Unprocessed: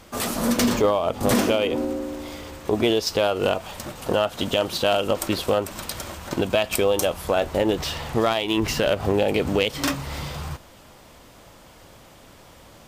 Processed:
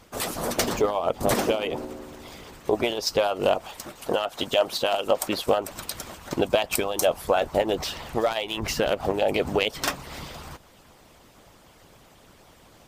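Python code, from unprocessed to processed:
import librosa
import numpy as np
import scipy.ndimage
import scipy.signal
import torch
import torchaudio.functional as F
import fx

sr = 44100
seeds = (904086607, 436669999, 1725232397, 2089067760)

y = fx.dynamic_eq(x, sr, hz=700.0, q=1.5, threshold_db=-33.0, ratio=4.0, max_db=6)
y = fx.hpss(y, sr, part='harmonic', gain_db=-17)
y = fx.low_shelf(y, sr, hz=240.0, db=-7.5, at=(3.67, 5.47))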